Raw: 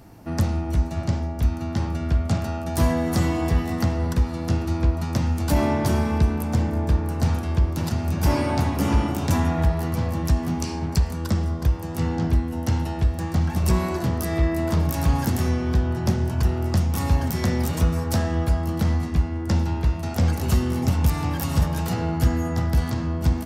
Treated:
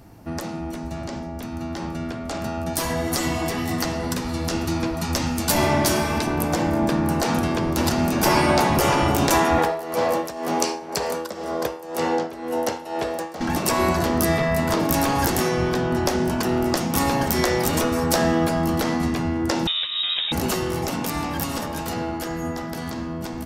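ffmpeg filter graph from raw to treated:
ffmpeg -i in.wav -filter_complex "[0:a]asettb=1/sr,asplit=3[link_01][link_02][link_03];[link_01]atrim=end=2.734[link_04];[link_02]atrim=start=2.73:end=6.27,asetpts=PTS-STARTPTS,afade=type=in:duration=0.004:curve=qsin,afade=type=out:start_time=3.536:duration=0.004:curve=qsin,highshelf=frequency=2300:gain=8.5,flanger=delay=6.3:depth=4.7:regen=-34:speed=2:shape=triangular[link_05];[link_03]atrim=start=6.266[link_06];[link_04][link_05]acrossfade=duration=0.004:curve1=hsin:curve2=qsin[link_07];[link_07][link_06]acrossfade=duration=0.004:curve1=qsin:curve2=hsin,asettb=1/sr,asplit=3[link_08][link_09][link_10];[link_08]atrim=end=9.584[link_11];[link_09]atrim=start=9.58:end=13.41,asetpts=PTS-STARTPTS,afade=type=in:duration=0.004:curve=qsin,afade=type=out:start_time=3.826:duration=0.004:curve=qsin,tremolo=f=2:d=0.8,highpass=frequency=490:width_type=q:width=2.3[link_12];[link_10]atrim=start=13.406[link_13];[link_11][link_12]acrossfade=duration=0.004:curve1=hsin:curve2=qsin[link_14];[link_14][link_13]acrossfade=duration=0.004:curve1=qsin:curve2=hsin,asettb=1/sr,asplit=3[link_15][link_16][link_17];[link_15]atrim=end=19.674[link_18];[link_16]atrim=start=19.67:end=20.32,asetpts=PTS-STARTPTS,afade=type=in:duration=0.004:curve=qsin,afade=type=out:start_time=0.646:duration=0.004:curve=qsin,acompressor=threshold=-22dB:ratio=2.5:attack=3.2:release=140:knee=1:detection=peak,lowpass=frequency=3300:width_type=q:width=0.5098,lowpass=frequency=3300:width_type=q:width=0.6013,lowpass=frequency=3300:width_type=q:width=0.9,lowpass=frequency=3300:width_type=q:width=2.563,afreqshift=-3900[link_19];[link_17]atrim=start=20.316[link_20];[link_18][link_19]acrossfade=duration=0.004:curve1=hsin:curve2=qsin[link_21];[link_21][link_20]acrossfade=duration=0.004:curve1=qsin:curve2=hsin,afftfilt=real='re*lt(hypot(re,im),0.355)':imag='im*lt(hypot(re,im),0.355)':win_size=1024:overlap=0.75,bandreject=frequency=439.2:width_type=h:width=4,bandreject=frequency=878.4:width_type=h:width=4,bandreject=frequency=1317.6:width_type=h:width=4,bandreject=frequency=1756.8:width_type=h:width=4,bandreject=frequency=2196:width_type=h:width=4,bandreject=frequency=2635.2:width_type=h:width=4,bandreject=frequency=3074.4:width_type=h:width=4,bandreject=frequency=3513.6:width_type=h:width=4,bandreject=frequency=3952.8:width_type=h:width=4,bandreject=frequency=4392:width_type=h:width=4,bandreject=frequency=4831.2:width_type=h:width=4,bandreject=frequency=5270.4:width_type=h:width=4,bandreject=frequency=5709.6:width_type=h:width=4,bandreject=frequency=6148.8:width_type=h:width=4,bandreject=frequency=6588:width_type=h:width=4,bandreject=frequency=7027.2:width_type=h:width=4,bandreject=frequency=7466.4:width_type=h:width=4,bandreject=frequency=7905.6:width_type=h:width=4,bandreject=frequency=8344.8:width_type=h:width=4,bandreject=frequency=8784:width_type=h:width=4,bandreject=frequency=9223.2:width_type=h:width=4,bandreject=frequency=9662.4:width_type=h:width=4,bandreject=frequency=10101.6:width_type=h:width=4,bandreject=frequency=10540.8:width_type=h:width=4,bandreject=frequency=10980:width_type=h:width=4,bandreject=frequency=11419.2:width_type=h:width=4,bandreject=frequency=11858.4:width_type=h:width=4,bandreject=frequency=12297.6:width_type=h:width=4,bandreject=frequency=12736.8:width_type=h:width=4,dynaudnorm=framelen=500:gausssize=13:maxgain=11.5dB" out.wav

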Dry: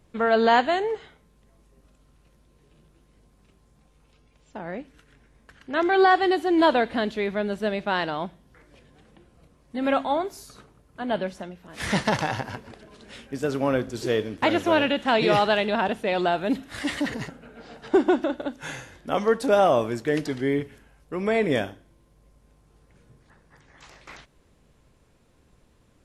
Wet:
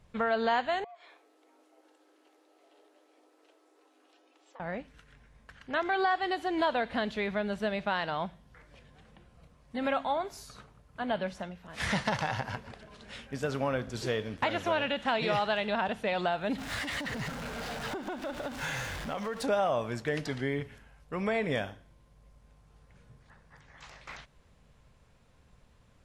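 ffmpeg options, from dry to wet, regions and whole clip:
ffmpeg -i in.wav -filter_complex "[0:a]asettb=1/sr,asplit=3[link_01][link_02][link_03];[link_01]atrim=end=0.844[link_04];[link_02]atrim=start=0.84:end=4.6,asetpts=PTS-STARTPTS,afade=type=in:duration=0.004:curve=qsin,afade=type=out:start_time=3.756:duration=0.004:curve=qsin,acompressor=threshold=-48dB:ratio=6:attack=3.2:release=140:knee=1:detection=peak,afreqshift=260[link_05];[link_03]atrim=start=4.596[link_06];[link_04][link_05]acrossfade=duration=0.004:curve1=hsin:curve2=qsin[link_07];[link_07][link_06]acrossfade=duration=0.004:curve1=qsin:curve2=hsin,asettb=1/sr,asplit=3[link_08][link_09][link_10];[link_08]atrim=end=16.584[link_11];[link_09]atrim=start=16.58:end=19.43,asetpts=PTS-STARTPTS,afade=type=in:duration=0.004:curve=qsin,afade=type=out:start_time=2.846:duration=0.004:curve=qsin,aeval=exprs='val(0)+0.5*0.0237*sgn(val(0))':channel_layout=same,acompressor=threshold=-30dB:ratio=4:attack=3.2:release=140:knee=1:detection=peak[link_12];[link_10]atrim=start=19.426[link_13];[link_11][link_12]acrossfade=duration=0.004:curve1=hsin:curve2=qsin[link_14];[link_14][link_13]acrossfade=duration=0.004:curve1=qsin:curve2=hsin,equalizer=frequency=330:width_type=o:width=0.89:gain=-9.5,acompressor=threshold=-28dB:ratio=2.5,highshelf=frequency=8800:gain=-10" out.wav

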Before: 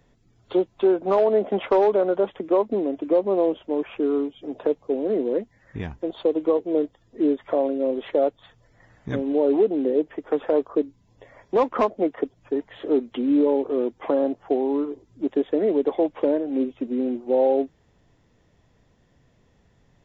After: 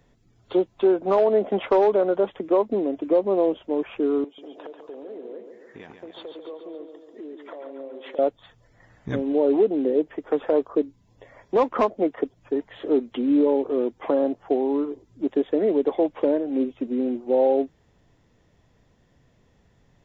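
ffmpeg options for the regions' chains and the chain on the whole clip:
ffmpeg -i in.wav -filter_complex "[0:a]asettb=1/sr,asplit=3[link_01][link_02][link_03];[link_01]atrim=end=4.244[link_04];[link_02]atrim=start=4.24:end=8.19,asetpts=PTS-STARTPTS,afade=type=in:duration=0.004:curve=qsin,afade=type=out:start_time=3.946:duration=0.004:curve=qsin,highpass=330,acompressor=threshold=-37dB:ratio=5:attack=3.2:release=140:knee=1:detection=peak,aecho=1:1:140|280|420|560|700|840|980:0.447|0.25|0.14|0.0784|0.0439|0.0246|0.0138,atrim=end_sample=174195[link_05];[link_03]atrim=start=8.186[link_06];[link_04][link_05]acrossfade=duration=0.004:curve1=hsin:curve2=qsin[link_07];[link_07][link_06]acrossfade=duration=0.004:curve1=qsin:curve2=hsin" out.wav

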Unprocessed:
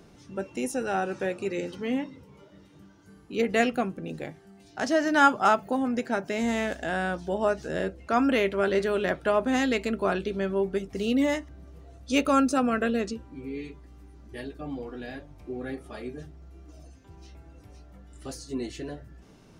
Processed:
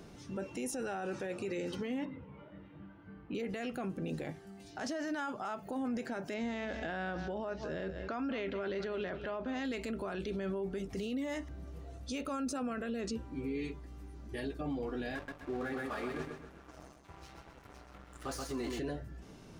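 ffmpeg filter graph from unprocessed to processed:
ffmpeg -i in.wav -filter_complex "[0:a]asettb=1/sr,asplit=3[link_01][link_02][link_03];[link_01]atrim=end=2.054[link_04];[link_02]atrim=start=2.05:end=3.35,asetpts=PTS-STARTPTS,afade=type=in:duration=0.004:curve=qsin,afade=type=out:start_time=1.296:duration=0.004:curve=qsin,lowpass=frequency=2700:width=0.5412,lowpass=frequency=2700:width=1.3066,bandreject=frequency=400:width=8.8[link_05];[link_03]atrim=start=3.346[link_06];[link_04][link_05]acrossfade=duration=0.004:curve1=hsin:curve2=qsin[link_07];[link_07][link_06]acrossfade=duration=0.004:curve1=qsin:curve2=hsin,asettb=1/sr,asplit=3[link_08][link_09][link_10];[link_08]atrim=end=6.344[link_11];[link_09]atrim=start=6.34:end=9.65,asetpts=PTS-STARTPTS,afade=type=in:duration=0.004:curve=qsin,afade=type=out:start_time=3.306:duration=0.004:curve=qsin,lowpass=frequency=5500:width=0.5412,lowpass=frequency=5500:width=1.3066,aecho=1:1:196:0.15,atrim=end_sample=145971[link_12];[link_10]atrim=start=9.646[link_13];[link_11][link_12]acrossfade=duration=0.004:curve1=hsin:curve2=qsin[link_14];[link_14][link_13]acrossfade=duration=0.004:curve1=qsin:curve2=hsin,asettb=1/sr,asplit=3[link_15][link_16][link_17];[link_15]atrim=end=15.154[link_18];[link_16]atrim=start=15.15:end=18.79,asetpts=PTS-STARTPTS,afade=type=in:duration=0.004:curve=qsin,afade=type=out:start_time=3.636:duration=0.004:curve=qsin,equalizer=frequency=1200:width=0.91:gain=12.5,aeval=exprs='sgn(val(0))*max(abs(val(0))-0.00422,0)':channel_layout=same,aecho=1:1:129|258|387|516|645:0.447|0.174|0.0679|0.0265|0.0103,atrim=end_sample=160524[link_19];[link_17]atrim=start=18.786[link_20];[link_18][link_19]acrossfade=duration=0.004:curve1=hsin:curve2=qsin[link_21];[link_21][link_20]acrossfade=duration=0.004:curve1=qsin:curve2=hsin,acompressor=threshold=-28dB:ratio=6,alimiter=level_in=7dB:limit=-24dB:level=0:latency=1:release=22,volume=-7dB,volume=1dB" out.wav

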